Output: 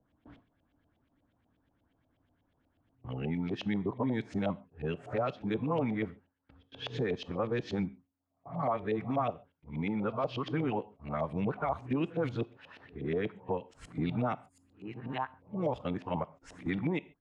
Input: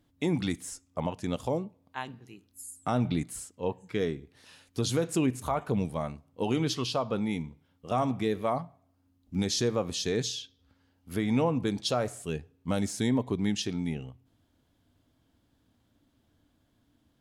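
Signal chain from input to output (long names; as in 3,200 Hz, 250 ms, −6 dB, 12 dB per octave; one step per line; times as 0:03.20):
played backwards from end to start
noise gate with hold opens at −56 dBFS
auto-filter low-pass saw up 8.3 Hz 580–3,000 Hz
on a send at −17.5 dB: convolution reverb, pre-delay 3 ms
on the sum: multiband upward and downward compressor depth 70%
level −5 dB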